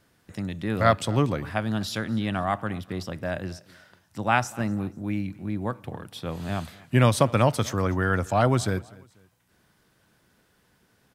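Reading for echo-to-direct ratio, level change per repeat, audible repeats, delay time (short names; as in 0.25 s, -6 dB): -22.5 dB, -9.0 dB, 2, 0.245 s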